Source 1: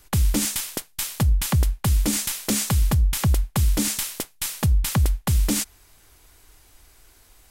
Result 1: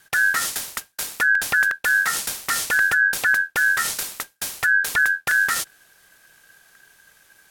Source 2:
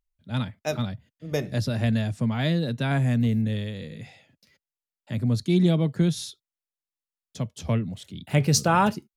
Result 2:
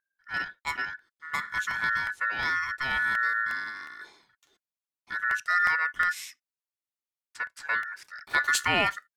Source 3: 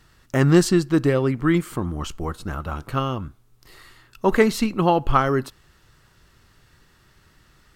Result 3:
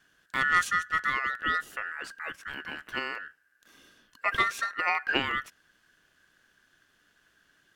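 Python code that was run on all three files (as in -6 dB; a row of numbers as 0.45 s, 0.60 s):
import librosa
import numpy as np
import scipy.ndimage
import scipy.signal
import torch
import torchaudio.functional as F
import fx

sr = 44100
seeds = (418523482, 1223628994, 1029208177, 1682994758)

y = fx.cheby_harmonics(x, sr, harmonics=(7,), levels_db=(-43,), full_scale_db=-2.0)
y = y * np.sin(2.0 * np.pi * 1600.0 * np.arange(len(y)) / sr)
y = fx.buffer_crackle(y, sr, first_s=0.63, period_s=0.36, block=64, kind='repeat')
y = y * 10.0 ** (-9 / 20.0) / np.max(np.abs(y))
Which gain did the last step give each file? +3.0 dB, -1.5 dB, -6.5 dB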